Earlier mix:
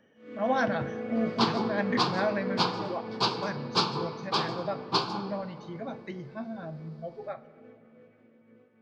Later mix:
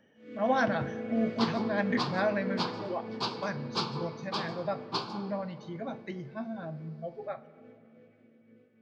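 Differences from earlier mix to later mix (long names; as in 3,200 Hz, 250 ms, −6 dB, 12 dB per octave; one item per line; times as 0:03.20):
first sound: add parametric band 940 Hz −14 dB 0.89 octaves
second sound −6.5 dB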